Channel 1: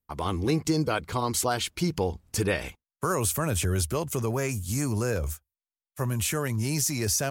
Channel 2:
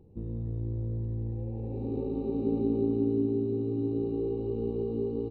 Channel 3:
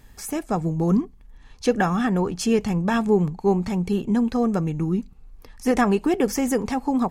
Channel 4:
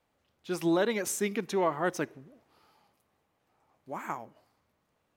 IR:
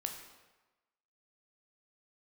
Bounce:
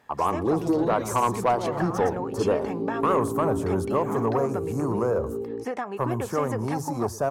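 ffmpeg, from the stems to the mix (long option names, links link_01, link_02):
-filter_complex "[0:a]highshelf=frequency=1600:width_type=q:width=3:gain=-13,bandreject=frequency=51.79:width_type=h:width=4,bandreject=frequency=103.58:width_type=h:width=4,bandreject=frequency=155.37:width_type=h:width=4,volume=-1.5dB,asplit=3[link_01][link_02][link_03];[link_02]volume=-18.5dB[link_04];[1:a]adelay=350,volume=-5dB[link_05];[2:a]equalizer=frequency=1400:width=0.35:gain=13.5,acompressor=threshold=-16dB:ratio=16,volume=-15.5dB[link_06];[3:a]bass=frequency=250:gain=10,treble=frequency=4000:gain=4,alimiter=limit=-23dB:level=0:latency=1:release=76,volume=-0.5dB,asplit=2[link_07][link_08];[link_08]volume=-8.5dB[link_09];[link_03]apad=whole_len=227615[link_10];[link_07][link_10]sidechaincompress=threshold=-36dB:ratio=8:attack=42:release=151[link_11];[link_04][link_09]amix=inputs=2:normalize=0,aecho=0:1:115:1[link_12];[link_01][link_05][link_06][link_11][link_12]amix=inputs=5:normalize=0,highpass=94,equalizer=frequency=590:width_type=o:width=2:gain=7,asoftclip=type=tanh:threshold=-13.5dB"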